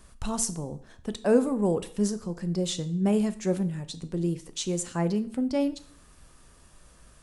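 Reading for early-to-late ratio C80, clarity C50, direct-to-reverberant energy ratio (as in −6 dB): 19.5 dB, 16.0 dB, 11.0 dB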